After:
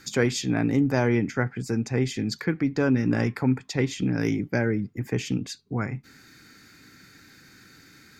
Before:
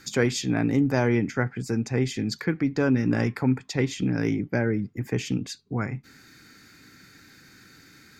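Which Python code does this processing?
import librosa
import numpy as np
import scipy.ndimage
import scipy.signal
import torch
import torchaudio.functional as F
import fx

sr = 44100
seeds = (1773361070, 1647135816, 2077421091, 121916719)

y = fx.high_shelf(x, sr, hz=fx.line((4.19, 5400.0), (4.73, 3800.0)), db=9.0, at=(4.19, 4.73), fade=0.02)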